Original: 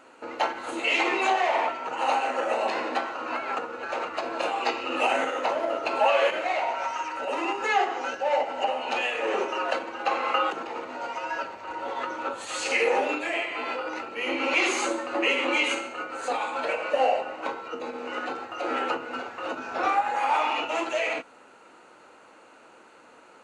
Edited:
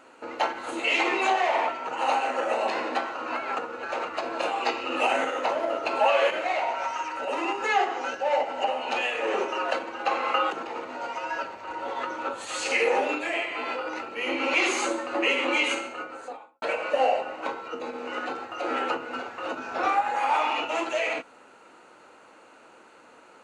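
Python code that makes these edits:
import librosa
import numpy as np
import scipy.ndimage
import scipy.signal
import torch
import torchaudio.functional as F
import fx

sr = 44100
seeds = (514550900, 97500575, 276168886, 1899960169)

y = fx.studio_fade_out(x, sr, start_s=15.85, length_s=0.77)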